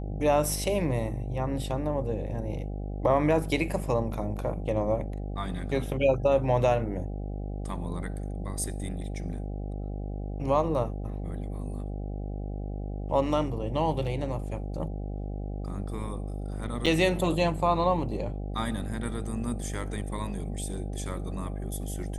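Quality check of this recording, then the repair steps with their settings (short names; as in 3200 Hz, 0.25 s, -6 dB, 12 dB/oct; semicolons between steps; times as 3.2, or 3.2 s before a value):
buzz 50 Hz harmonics 16 -34 dBFS
16.86–16.87 gap 5.6 ms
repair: de-hum 50 Hz, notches 16; interpolate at 16.86, 5.6 ms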